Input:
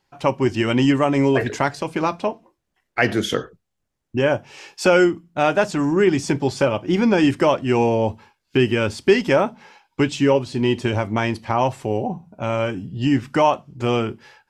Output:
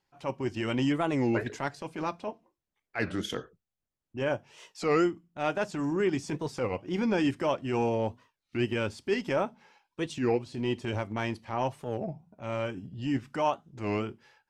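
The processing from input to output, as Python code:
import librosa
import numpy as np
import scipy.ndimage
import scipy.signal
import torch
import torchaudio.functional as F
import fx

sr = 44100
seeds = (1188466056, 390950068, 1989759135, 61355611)

y = fx.transient(x, sr, attack_db=-8, sustain_db=-4)
y = fx.record_warp(y, sr, rpm=33.33, depth_cents=250.0)
y = y * librosa.db_to_amplitude(-9.0)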